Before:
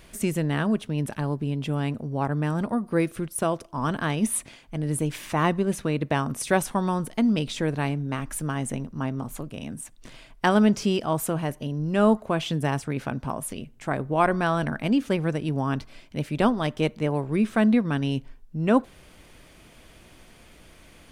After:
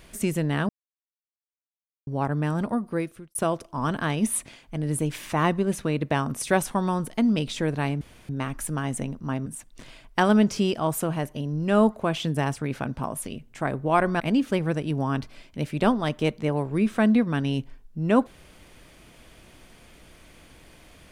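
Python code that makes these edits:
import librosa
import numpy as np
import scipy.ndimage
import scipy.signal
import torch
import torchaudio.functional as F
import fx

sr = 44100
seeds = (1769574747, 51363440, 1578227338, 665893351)

y = fx.edit(x, sr, fx.silence(start_s=0.69, length_s=1.38),
    fx.fade_out_span(start_s=2.74, length_s=0.61),
    fx.insert_room_tone(at_s=8.01, length_s=0.28),
    fx.cut(start_s=9.18, length_s=0.54),
    fx.cut(start_s=14.46, length_s=0.32), tone=tone)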